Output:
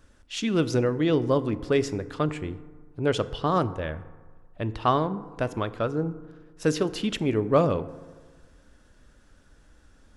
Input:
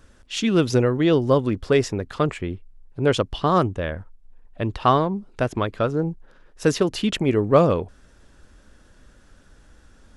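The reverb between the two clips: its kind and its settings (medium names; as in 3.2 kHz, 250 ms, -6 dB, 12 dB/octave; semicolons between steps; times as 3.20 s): FDN reverb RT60 1.5 s, low-frequency decay 1×, high-frequency decay 0.4×, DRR 13 dB; trim -5 dB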